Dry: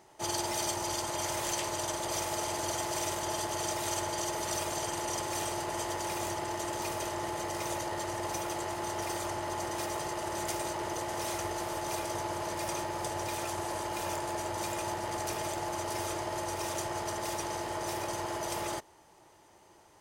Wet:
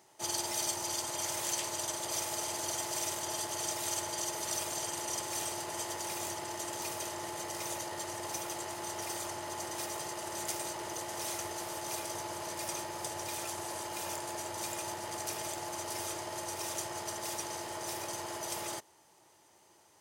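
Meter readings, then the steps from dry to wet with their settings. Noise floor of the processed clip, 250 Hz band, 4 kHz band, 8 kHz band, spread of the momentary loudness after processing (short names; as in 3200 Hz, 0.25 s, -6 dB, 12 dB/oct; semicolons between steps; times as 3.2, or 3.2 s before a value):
-64 dBFS, -6.0 dB, -0.5 dB, +1.0 dB, 5 LU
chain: HPF 93 Hz; high shelf 3100 Hz +8.5 dB; gain -6 dB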